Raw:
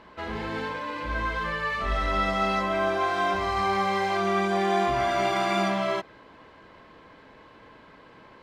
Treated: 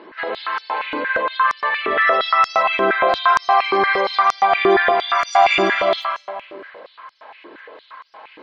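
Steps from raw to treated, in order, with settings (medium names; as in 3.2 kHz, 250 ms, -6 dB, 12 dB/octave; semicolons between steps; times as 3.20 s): modulation noise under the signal 21 dB; spectral gate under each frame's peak -30 dB strong; reverberation RT60 1.4 s, pre-delay 105 ms, DRR 2.5 dB; step-sequenced high-pass 8.6 Hz 340–5600 Hz; trim +5.5 dB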